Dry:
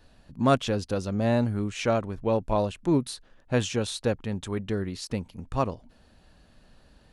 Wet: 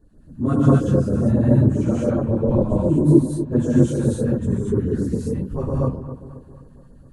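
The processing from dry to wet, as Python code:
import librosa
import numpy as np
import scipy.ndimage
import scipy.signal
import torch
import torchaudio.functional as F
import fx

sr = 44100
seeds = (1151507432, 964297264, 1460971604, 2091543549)

p1 = fx.phase_scramble(x, sr, seeds[0], window_ms=50)
p2 = fx.band_shelf(p1, sr, hz=3400.0, db=-12.0, octaves=1.7)
p3 = p2 + fx.echo_wet_lowpass(p2, sr, ms=244, feedback_pct=51, hz=2200.0, wet_db=-12, dry=0)
p4 = fx.rev_gated(p3, sr, seeds[1], gate_ms=270, shape='rising', drr_db=-6.5)
p5 = fx.filter_lfo_notch(p4, sr, shape='sine', hz=7.4, low_hz=370.0, high_hz=3100.0, q=0.78)
p6 = fx.low_shelf_res(p5, sr, hz=510.0, db=9.5, q=1.5)
y = p6 * librosa.db_to_amplitude(-6.0)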